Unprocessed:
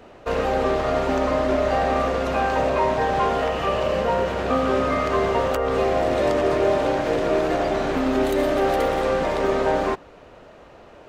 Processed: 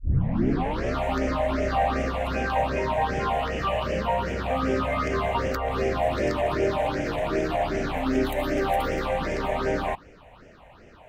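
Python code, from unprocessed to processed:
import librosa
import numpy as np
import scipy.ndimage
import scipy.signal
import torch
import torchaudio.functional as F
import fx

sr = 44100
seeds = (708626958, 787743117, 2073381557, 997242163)

y = fx.tape_start_head(x, sr, length_s=0.94)
y = fx.phaser_stages(y, sr, stages=6, low_hz=330.0, high_hz=1100.0, hz=2.6, feedback_pct=25)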